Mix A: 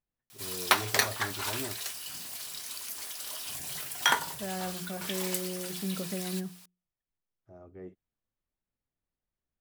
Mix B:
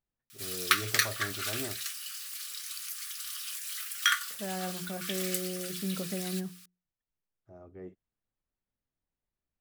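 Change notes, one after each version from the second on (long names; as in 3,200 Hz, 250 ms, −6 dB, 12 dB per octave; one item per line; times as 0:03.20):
background: add linear-phase brick-wall high-pass 1,100 Hz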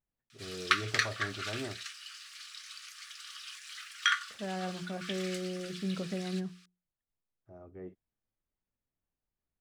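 master: add high-frequency loss of the air 110 metres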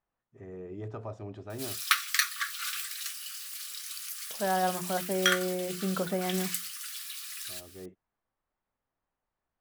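second voice: add parametric band 990 Hz +14 dB 2.3 octaves
background: entry +1.20 s
master: remove high-frequency loss of the air 110 metres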